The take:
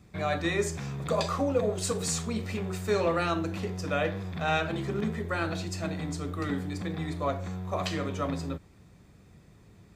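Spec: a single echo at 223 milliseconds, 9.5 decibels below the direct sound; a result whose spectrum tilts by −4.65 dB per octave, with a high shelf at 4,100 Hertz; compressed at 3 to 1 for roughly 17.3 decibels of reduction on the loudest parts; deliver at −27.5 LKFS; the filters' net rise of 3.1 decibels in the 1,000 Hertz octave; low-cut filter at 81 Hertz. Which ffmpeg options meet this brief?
ffmpeg -i in.wav -af "highpass=81,equalizer=frequency=1000:width_type=o:gain=4,highshelf=frequency=4100:gain=3.5,acompressor=threshold=-46dB:ratio=3,aecho=1:1:223:0.335,volume=16.5dB" out.wav

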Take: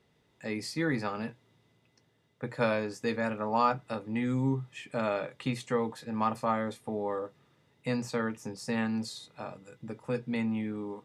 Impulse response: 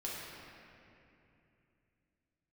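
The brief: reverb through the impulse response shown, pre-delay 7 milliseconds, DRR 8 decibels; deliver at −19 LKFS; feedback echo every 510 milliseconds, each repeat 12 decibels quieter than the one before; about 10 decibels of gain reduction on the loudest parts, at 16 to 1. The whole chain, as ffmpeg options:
-filter_complex "[0:a]acompressor=threshold=-31dB:ratio=16,aecho=1:1:510|1020|1530:0.251|0.0628|0.0157,asplit=2[link_01][link_02];[1:a]atrim=start_sample=2205,adelay=7[link_03];[link_02][link_03]afir=irnorm=-1:irlink=0,volume=-10dB[link_04];[link_01][link_04]amix=inputs=2:normalize=0,volume=18.5dB"

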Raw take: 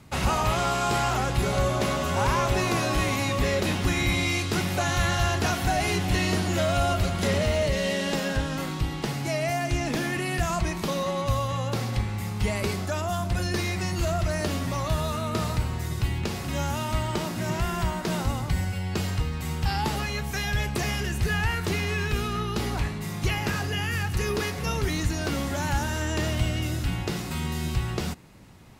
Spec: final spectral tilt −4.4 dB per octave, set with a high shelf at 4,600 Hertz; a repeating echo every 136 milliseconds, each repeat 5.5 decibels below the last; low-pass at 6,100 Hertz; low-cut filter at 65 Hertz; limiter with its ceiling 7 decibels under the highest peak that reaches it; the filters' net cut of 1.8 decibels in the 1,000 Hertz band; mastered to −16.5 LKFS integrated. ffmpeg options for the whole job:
ffmpeg -i in.wav -af "highpass=65,lowpass=6100,equalizer=frequency=1000:width_type=o:gain=-3,highshelf=frequency=4600:gain=8.5,alimiter=limit=-19.5dB:level=0:latency=1,aecho=1:1:136|272|408|544|680|816|952:0.531|0.281|0.149|0.079|0.0419|0.0222|0.0118,volume=11dB" out.wav

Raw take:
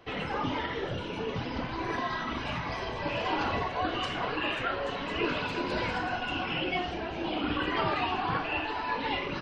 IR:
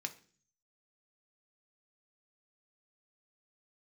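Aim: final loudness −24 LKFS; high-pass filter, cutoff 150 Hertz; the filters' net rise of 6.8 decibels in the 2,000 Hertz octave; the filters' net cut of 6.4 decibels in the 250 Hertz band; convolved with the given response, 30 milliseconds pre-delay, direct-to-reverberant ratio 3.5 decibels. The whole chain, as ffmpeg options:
-filter_complex "[0:a]highpass=150,equalizer=frequency=250:width_type=o:gain=-8.5,equalizer=frequency=2000:width_type=o:gain=9,asplit=2[link_01][link_02];[1:a]atrim=start_sample=2205,adelay=30[link_03];[link_02][link_03]afir=irnorm=-1:irlink=0,volume=-3dB[link_04];[link_01][link_04]amix=inputs=2:normalize=0,volume=3dB"

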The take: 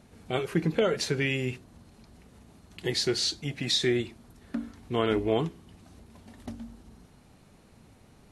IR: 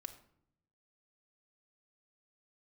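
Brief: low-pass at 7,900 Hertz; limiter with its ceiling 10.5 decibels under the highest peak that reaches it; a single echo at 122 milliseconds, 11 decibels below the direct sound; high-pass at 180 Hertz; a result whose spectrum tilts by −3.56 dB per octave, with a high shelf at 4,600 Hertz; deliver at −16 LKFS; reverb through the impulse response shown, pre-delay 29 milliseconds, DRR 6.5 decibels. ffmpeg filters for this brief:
-filter_complex "[0:a]highpass=180,lowpass=7900,highshelf=frequency=4600:gain=6.5,alimiter=limit=-20.5dB:level=0:latency=1,aecho=1:1:122:0.282,asplit=2[link_01][link_02];[1:a]atrim=start_sample=2205,adelay=29[link_03];[link_02][link_03]afir=irnorm=-1:irlink=0,volume=-2.5dB[link_04];[link_01][link_04]amix=inputs=2:normalize=0,volume=15dB"

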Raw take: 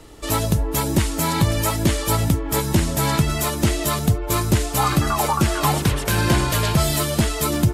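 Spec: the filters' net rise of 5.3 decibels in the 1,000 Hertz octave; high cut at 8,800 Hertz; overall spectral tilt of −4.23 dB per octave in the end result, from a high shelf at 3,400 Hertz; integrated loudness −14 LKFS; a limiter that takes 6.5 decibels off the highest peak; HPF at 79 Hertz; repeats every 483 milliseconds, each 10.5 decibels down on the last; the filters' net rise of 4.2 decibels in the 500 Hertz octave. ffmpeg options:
ffmpeg -i in.wav -af "highpass=79,lowpass=8800,equalizer=frequency=500:width_type=o:gain=4,equalizer=frequency=1000:width_type=o:gain=4.5,highshelf=frequency=3400:gain=8.5,alimiter=limit=-8dB:level=0:latency=1,aecho=1:1:483|966|1449:0.299|0.0896|0.0269,volume=4.5dB" out.wav

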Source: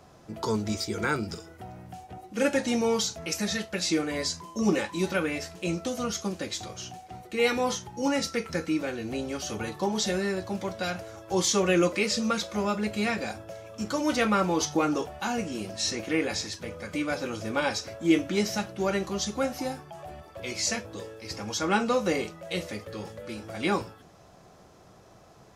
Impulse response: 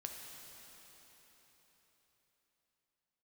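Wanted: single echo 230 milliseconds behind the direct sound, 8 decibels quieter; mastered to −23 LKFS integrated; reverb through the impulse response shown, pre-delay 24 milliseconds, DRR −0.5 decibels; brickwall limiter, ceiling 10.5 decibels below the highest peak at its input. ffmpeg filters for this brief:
-filter_complex "[0:a]alimiter=limit=-21dB:level=0:latency=1,aecho=1:1:230:0.398,asplit=2[link_01][link_02];[1:a]atrim=start_sample=2205,adelay=24[link_03];[link_02][link_03]afir=irnorm=-1:irlink=0,volume=3dB[link_04];[link_01][link_04]amix=inputs=2:normalize=0,volume=5dB"

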